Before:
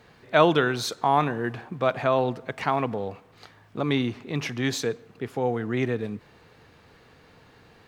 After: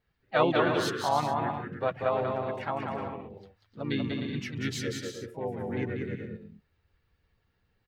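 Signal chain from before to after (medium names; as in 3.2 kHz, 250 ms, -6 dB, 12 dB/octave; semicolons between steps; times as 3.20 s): expander on every frequency bin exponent 1.5; harmony voices -4 st -5 dB, +3 st -11 dB; bouncing-ball echo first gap 190 ms, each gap 0.6×, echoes 5; trim -6 dB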